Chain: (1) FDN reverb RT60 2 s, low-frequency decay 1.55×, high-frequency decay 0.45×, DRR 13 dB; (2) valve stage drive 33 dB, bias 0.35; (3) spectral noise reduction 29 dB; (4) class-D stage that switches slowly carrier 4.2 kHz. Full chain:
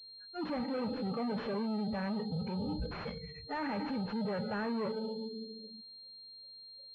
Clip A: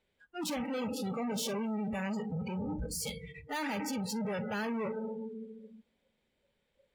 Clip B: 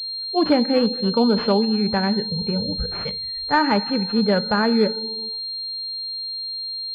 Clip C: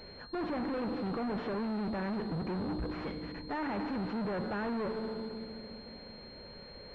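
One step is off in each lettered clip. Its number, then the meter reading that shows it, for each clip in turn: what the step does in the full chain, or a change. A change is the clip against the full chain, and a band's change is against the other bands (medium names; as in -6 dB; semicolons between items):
4, 2 kHz band +3.0 dB; 2, crest factor change +6.5 dB; 3, 4 kHz band -3.5 dB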